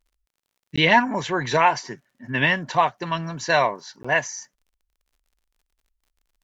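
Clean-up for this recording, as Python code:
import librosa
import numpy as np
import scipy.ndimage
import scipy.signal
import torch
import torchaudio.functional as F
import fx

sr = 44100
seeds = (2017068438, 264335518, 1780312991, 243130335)

y = fx.fix_declick_ar(x, sr, threshold=6.5)
y = fx.fix_interpolate(y, sr, at_s=(0.76, 4.03), length_ms=15.0)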